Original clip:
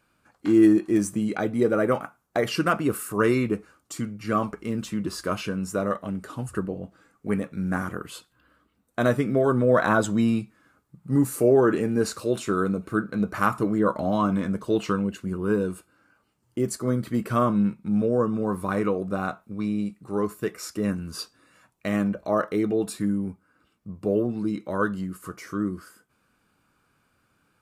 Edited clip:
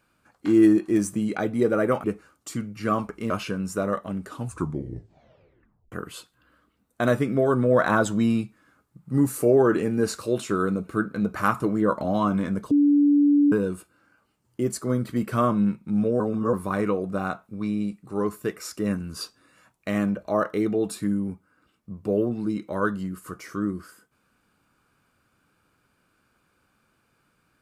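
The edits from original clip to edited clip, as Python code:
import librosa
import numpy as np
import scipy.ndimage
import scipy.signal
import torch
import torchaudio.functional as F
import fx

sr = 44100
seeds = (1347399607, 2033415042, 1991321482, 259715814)

y = fx.edit(x, sr, fx.cut(start_s=2.04, length_s=1.44),
    fx.cut(start_s=4.74, length_s=0.54),
    fx.tape_stop(start_s=6.38, length_s=1.52),
    fx.bleep(start_s=14.69, length_s=0.81, hz=289.0, db=-14.5),
    fx.reverse_span(start_s=18.18, length_s=0.33), tone=tone)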